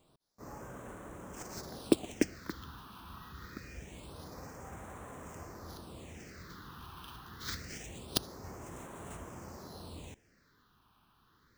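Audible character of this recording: aliases and images of a low sample rate 15 kHz, jitter 20%; phasing stages 6, 0.25 Hz, lowest notch 530–4600 Hz

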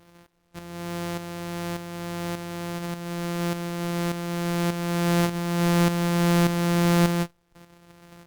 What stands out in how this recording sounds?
a buzz of ramps at a fixed pitch in blocks of 256 samples; tremolo saw up 1.7 Hz, depth 60%; a quantiser's noise floor 12-bit, dither none; Opus

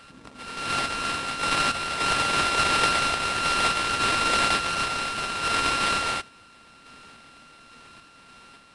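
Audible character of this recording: a buzz of ramps at a fixed pitch in blocks of 32 samples; random-step tremolo 3.5 Hz; aliases and images of a low sample rate 6.7 kHz, jitter 20%; Nellymoser

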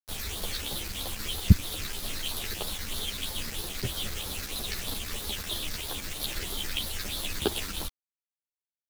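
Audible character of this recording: phasing stages 6, 3.1 Hz, lowest notch 800–2400 Hz; a quantiser's noise floor 6-bit, dither none; a shimmering, thickened sound

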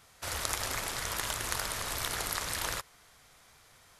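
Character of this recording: noise floor -61 dBFS; spectral tilt -2.0 dB/octave

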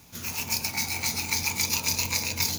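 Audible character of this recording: noise floor -48 dBFS; spectral tilt -1.0 dB/octave

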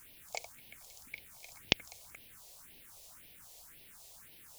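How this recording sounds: a quantiser's noise floor 10-bit, dither triangular; phasing stages 4, 1.9 Hz, lowest notch 230–1300 Hz

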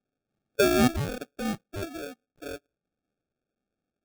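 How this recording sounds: aliases and images of a low sample rate 1 kHz, jitter 0%

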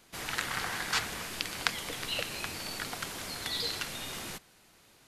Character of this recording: noise floor -62 dBFS; spectral tilt -2.5 dB/octave

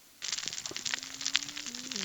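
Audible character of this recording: a quantiser's noise floor 10-bit, dither triangular; Opus

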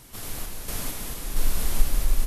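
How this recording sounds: random-step tremolo 4.4 Hz

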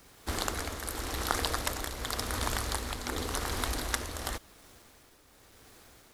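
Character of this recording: a quantiser's noise floor 10-bit, dither none; tremolo triangle 0.91 Hz, depth 55%

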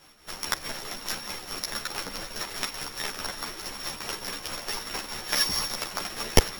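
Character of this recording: a buzz of ramps at a fixed pitch in blocks of 8 samples; tremolo triangle 4.7 Hz, depth 60%; a shimmering, thickened sound

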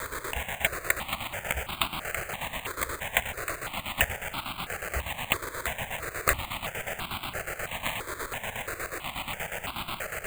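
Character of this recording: a quantiser's noise floor 6-bit, dither triangular; chopped level 8.3 Hz, depth 65%, duty 55%; aliases and images of a low sample rate 5.5 kHz, jitter 0%; notches that jump at a steady rate 3 Hz 770–1800 Hz

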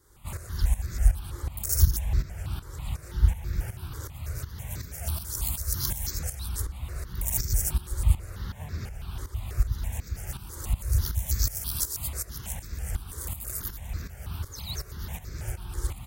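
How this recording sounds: tremolo saw up 2.7 Hz, depth 75%; notches that jump at a steady rate 6.1 Hz 700–3000 Hz

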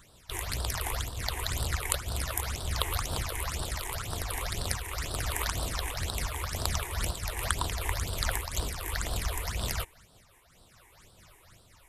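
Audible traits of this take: phasing stages 8, 2 Hz, lowest notch 170–2100 Hz; random flutter of the level

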